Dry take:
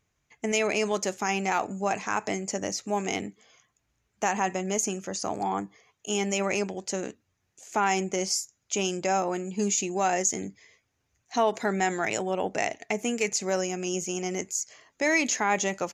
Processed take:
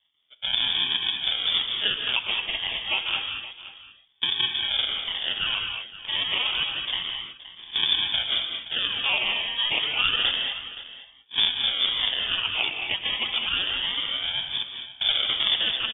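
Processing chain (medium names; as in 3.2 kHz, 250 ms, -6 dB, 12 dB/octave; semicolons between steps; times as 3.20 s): pitch shift switched off and on +4 st, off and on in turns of 77 ms; bass shelf 140 Hz -10.5 dB; in parallel at -1 dB: compression, threshold -37 dBFS, peak gain reduction 16.5 dB; on the sum: decimation with a swept rate 41×, swing 100% 0.29 Hz; on a send: delay 522 ms -15.5 dB; on the sum: gated-style reverb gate 250 ms rising, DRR 3.5 dB; frequency inversion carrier 3.5 kHz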